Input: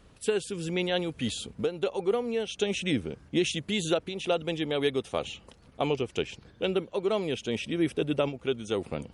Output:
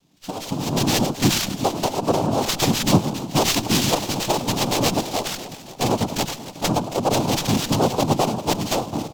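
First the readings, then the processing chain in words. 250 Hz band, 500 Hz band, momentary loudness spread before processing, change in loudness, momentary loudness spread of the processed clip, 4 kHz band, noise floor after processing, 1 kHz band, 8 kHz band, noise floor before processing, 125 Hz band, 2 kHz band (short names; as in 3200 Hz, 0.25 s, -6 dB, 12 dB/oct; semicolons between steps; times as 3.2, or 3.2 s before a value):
+8.5 dB, +4.0 dB, 5 LU, +8.5 dB, 7 LU, +10.0 dB, -40 dBFS, +15.5 dB, +16.5 dB, -57 dBFS, +13.0 dB, +6.5 dB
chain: bin magnitudes rounded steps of 15 dB; band shelf 550 Hz -12.5 dB; tape echo 98 ms, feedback 56%, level -12 dB, low-pass 2000 Hz; AGC gain up to 15 dB; on a send: feedback echo 0.273 s, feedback 59%, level -15 dB; on the sum: FFT band-reject 660–3000 Hz; HPF 150 Hz; tone controls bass -6 dB, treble -5 dB; noise vocoder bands 4; in parallel at -3 dB: limiter -14.5 dBFS, peak gain reduction 8 dB; on the sum: running maximum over 3 samples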